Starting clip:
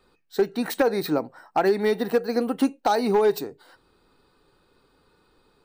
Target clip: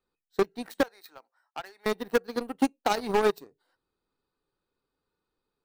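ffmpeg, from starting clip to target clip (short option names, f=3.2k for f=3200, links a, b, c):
-filter_complex "[0:a]asettb=1/sr,asplit=3[a][b][c];[a]atrim=end=0.834[d];[b]atrim=start=0.83:end=1.86,asetpts=PTS-STARTPTS,afade=t=in:d=0.004:c=qsin,afade=t=out:st=1.026:d=0.004:c=qsin,highpass=1k[e];[c]atrim=start=1.856[f];[d][e]acrossfade=d=0.004:c1=hsin:c2=qsin[g];[g][f]acrossfade=d=0.004:c1=qsin:c2=hsin,aeval=exprs='0.237*(cos(1*acos(clip(val(0)/0.237,-1,1)))-cos(1*PI/2))+0.0841*(cos(3*acos(clip(val(0)/0.237,-1,1)))-cos(3*PI/2))+0.0211*(cos(5*acos(clip(val(0)/0.237,-1,1)))-cos(5*PI/2))+0.00944*(cos(7*acos(clip(val(0)/0.237,-1,1)))-cos(7*PI/2))':c=same,volume=-1.5dB"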